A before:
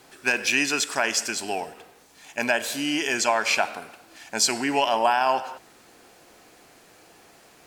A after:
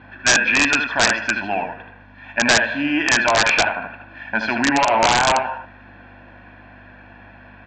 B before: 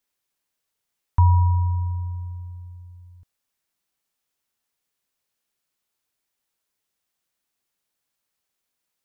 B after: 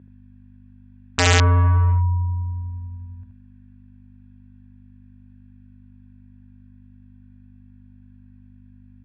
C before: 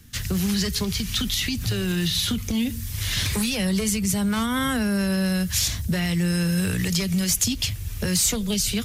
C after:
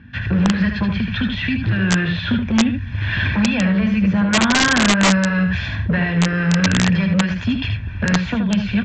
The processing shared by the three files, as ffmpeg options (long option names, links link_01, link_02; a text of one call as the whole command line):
ffmpeg -i in.wav -filter_complex "[0:a]aemphasis=mode=reproduction:type=50fm,bandreject=frequency=410:width=12,aecho=1:1:1.2:0.7,asplit=2[link_01][link_02];[link_02]acontrast=65,volume=-1dB[link_03];[link_01][link_03]amix=inputs=2:normalize=0,volume=9dB,asoftclip=hard,volume=-9dB,aeval=exprs='val(0)+0.0141*(sin(2*PI*50*n/s)+sin(2*PI*2*50*n/s)/2+sin(2*PI*3*50*n/s)/3+sin(2*PI*4*50*n/s)/4+sin(2*PI*5*50*n/s)/5)':channel_layout=same,highpass=110,equalizer=frequency=150:width_type=q:width=4:gain=-6,equalizer=frequency=780:width_type=q:width=4:gain=-7,equalizer=frequency=1500:width_type=q:width=4:gain=5,lowpass=frequency=2700:width=0.5412,lowpass=frequency=2700:width=1.3066,aecho=1:1:77:0.501,aresample=16000,aeval=exprs='(mod(2.11*val(0)+1,2)-1)/2.11':channel_layout=same,aresample=44100,volume=-1.5dB" out.wav